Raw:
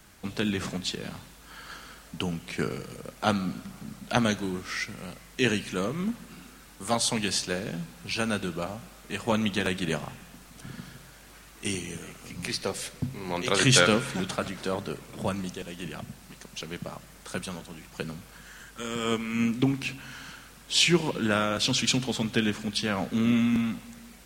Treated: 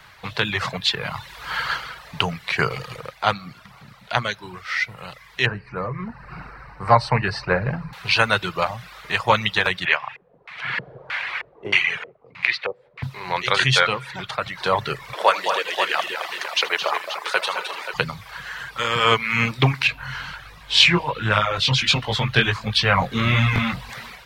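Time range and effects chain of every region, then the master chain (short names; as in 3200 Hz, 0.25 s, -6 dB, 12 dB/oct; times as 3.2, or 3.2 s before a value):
5.46–7.93 running mean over 13 samples + low shelf 130 Hz +9 dB + de-hum 85.12 Hz, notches 36
9.85–13.03 RIAA curve recording + LFO low-pass square 1.6 Hz 470–2300 Hz
15.13–17.94 HPF 360 Hz 24 dB/oct + tapped delay 76/216/253/294/532 ms -9.5/-7.5/-15/-13/-9.5 dB
19.87–23.9 low shelf 120 Hz +11.5 dB + chorus 1.4 Hz, delay 18.5 ms, depth 3.9 ms
whole clip: reverb removal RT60 0.57 s; graphic EQ 125/250/500/1000/2000/4000/8000 Hz +11/-11/+5/+12/+10/+10/-6 dB; AGC; gain -1 dB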